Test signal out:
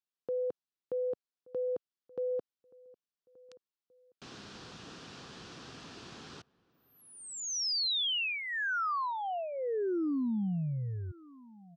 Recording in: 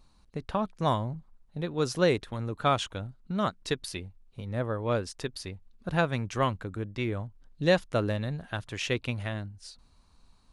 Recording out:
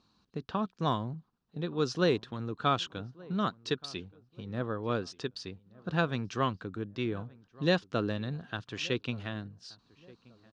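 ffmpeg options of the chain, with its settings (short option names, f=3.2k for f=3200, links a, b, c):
-filter_complex "[0:a]highpass=140,equalizer=f=590:t=q:w=4:g=-8,equalizer=f=870:t=q:w=4:g=-5,equalizer=f=2.1k:t=q:w=4:g=-9,lowpass=f=5.7k:w=0.5412,lowpass=f=5.7k:w=1.3066,asplit=2[a][b];[b]adelay=1177,lowpass=f=1.5k:p=1,volume=-22.5dB,asplit=2[c][d];[d]adelay=1177,lowpass=f=1.5k:p=1,volume=0.35[e];[a][c][e]amix=inputs=3:normalize=0"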